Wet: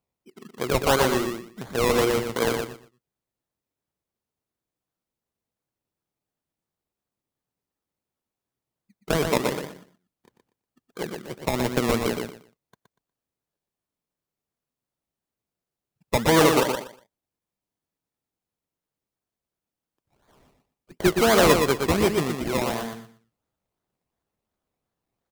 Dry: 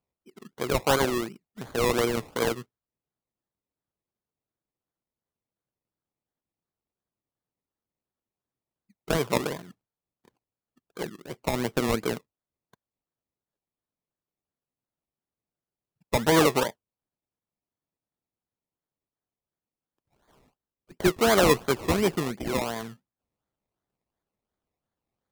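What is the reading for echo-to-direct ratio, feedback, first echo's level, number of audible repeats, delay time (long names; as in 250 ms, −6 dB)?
−5.0 dB, 21%, −5.0 dB, 3, 120 ms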